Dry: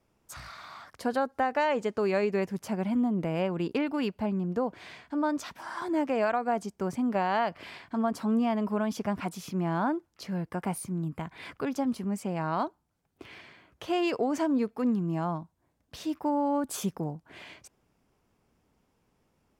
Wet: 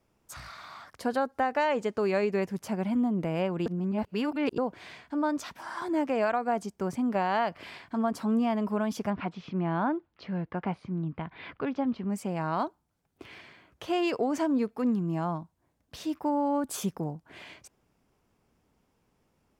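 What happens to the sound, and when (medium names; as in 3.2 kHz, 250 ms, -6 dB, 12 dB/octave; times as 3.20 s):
3.66–4.58 s: reverse
9.10–12.10 s: low-pass 3.7 kHz 24 dB/octave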